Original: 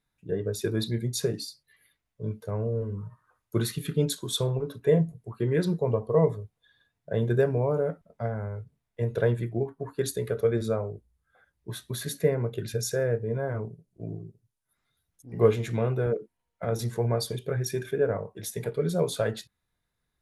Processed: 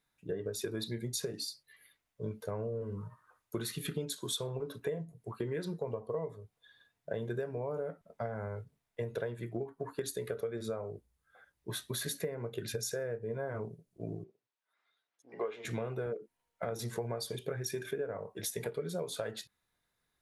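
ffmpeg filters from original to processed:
-filter_complex "[0:a]asettb=1/sr,asplit=3[a][b][c];[a]atrim=end=14.244[d];[b]atrim=start=14.24:end=15.65,asetpts=PTS-STARTPTS,afade=t=in:d=0.004:c=qsin,afade=t=out:st=1.406:d=0.004:c=qsin,highpass=500,lowpass=3.6k[e];[c]atrim=start=15.646[f];[d][e]acrossfade=d=0.004:c1=hsin:c2=qsin[g];[g][f]acrossfade=d=0.004:c1=qsin:c2=hsin,lowshelf=f=200:g=-10,acompressor=threshold=-35dB:ratio=12,volume=2dB"

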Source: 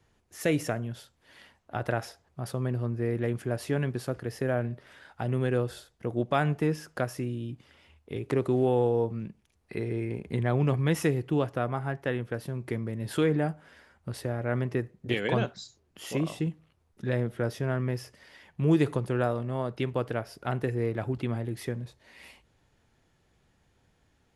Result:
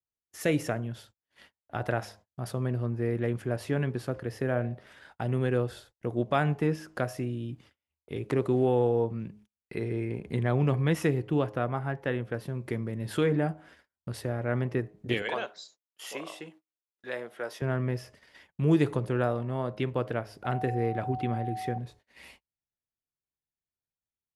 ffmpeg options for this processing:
-filter_complex "[0:a]asettb=1/sr,asplit=3[a][b][c];[a]atrim=end=15.224[d];[b]atrim=start=15.22:end=17.62,asetpts=PTS-STARTPTS,afade=t=in:d=0.004:c=qsin,afade=t=out:st=2.396:d=0.004:c=qsin,highpass=590[e];[c]atrim=start=17.616[f];[d][e]acrossfade=d=0.004:c1=hsin:c2=qsin[g];[g][f]acrossfade=d=0.004:c1=qsin:c2=hsin,asettb=1/sr,asplit=3[h][i][j];[h]atrim=end=20.444[k];[i]atrim=start=20.44:end=21.78,asetpts=PTS-STARTPTS,afade=t=in:d=0.004:c=qsin,afade=t=out:st=1.336:d=0.004:c=qsin,aeval=exprs='val(0)+0.02*sin(2*PI*750*n/s)':c=same[l];[j]atrim=start=21.776[m];[k][l]acrossfade=d=0.004:c1=hsin:c2=qsin[n];[n][m]acrossfade=d=0.004:c1=qsin:c2=hsin,bandreject=f=105:t=h:w=4,bandreject=f=210:t=h:w=4,bandreject=f=315:t=h:w=4,bandreject=f=420:t=h:w=4,bandreject=f=525:t=h:w=4,bandreject=f=630:t=h:w=4,bandreject=f=735:t=h:w=4,bandreject=f=840:t=h:w=4,bandreject=f=945:t=h:w=4,bandreject=f=1.05k:t=h:w=4,agate=range=-35dB:threshold=-53dB:ratio=16:detection=peak,adynamicequalizer=threshold=0.00224:dfrequency=4300:dqfactor=0.7:tfrequency=4300:tqfactor=0.7:attack=5:release=100:ratio=0.375:range=3:mode=cutabove:tftype=highshelf"

